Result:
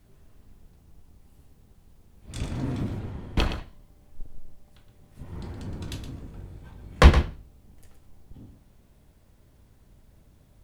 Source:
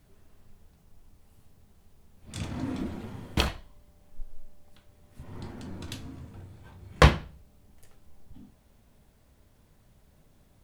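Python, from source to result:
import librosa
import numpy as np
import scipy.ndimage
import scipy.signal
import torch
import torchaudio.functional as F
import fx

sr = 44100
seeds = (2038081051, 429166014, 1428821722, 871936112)

y = fx.octave_divider(x, sr, octaves=1, level_db=3.0)
y = fx.high_shelf(y, sr, hz=5300.0, db=-10.0, at=(2.99, 3.56))
y = y + 10.0 ** (-9.5 / 20.0) * np.pad(y, (int(118 * sr / 1000.0), 0))[:len(y)]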